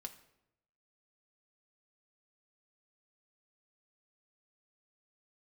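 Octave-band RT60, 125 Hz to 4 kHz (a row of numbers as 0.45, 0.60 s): 1.1, 0.95, 0.90, 0.75, 0.70, 0.60 s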